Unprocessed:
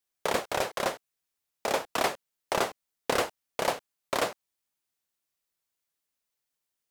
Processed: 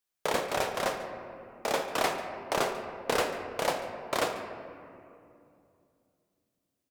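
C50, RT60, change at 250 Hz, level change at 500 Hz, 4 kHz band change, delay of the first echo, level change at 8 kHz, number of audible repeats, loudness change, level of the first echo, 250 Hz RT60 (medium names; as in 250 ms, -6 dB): 6.0 dB, 2.6 s, +0.5 dB, 0.0 dB, -1.0 dB, 142 ms, -1.0 dB, 1, -0.5 dB, -16.0 dB, 3.5 s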